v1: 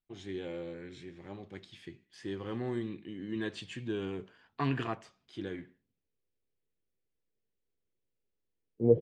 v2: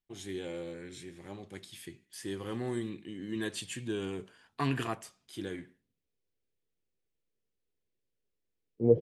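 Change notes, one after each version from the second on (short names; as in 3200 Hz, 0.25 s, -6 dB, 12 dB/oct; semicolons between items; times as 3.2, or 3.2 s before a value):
master: remove air absorption 150 m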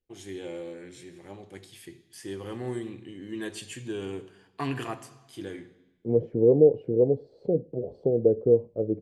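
second voice: entry -2.75 s; reverb: on, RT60 1.0 s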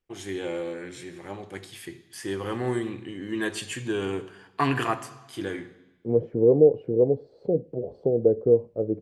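first voice +5.0 dB; master: add bell 1300 Hz +6.5 dB 1.5 oct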